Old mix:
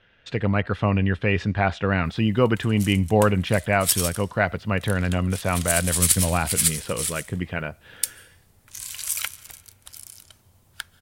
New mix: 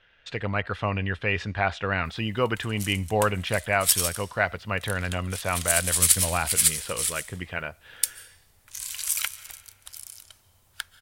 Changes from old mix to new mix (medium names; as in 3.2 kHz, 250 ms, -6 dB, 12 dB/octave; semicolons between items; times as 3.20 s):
background: send +6.0 dB; master: add peaking EQ 190 Hz -10 dB 2.7 oct